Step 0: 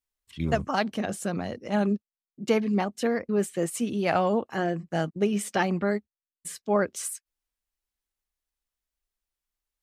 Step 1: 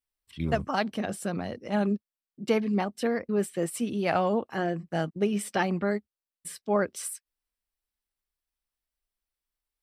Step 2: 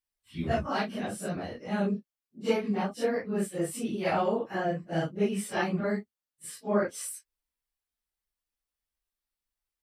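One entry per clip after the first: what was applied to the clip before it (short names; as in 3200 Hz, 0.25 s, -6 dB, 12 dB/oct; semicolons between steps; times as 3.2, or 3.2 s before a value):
notch 6700 Hz, Q 5.4; gain -1.5 dB
phase scrambler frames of 0.1 s; gain -1.5 dB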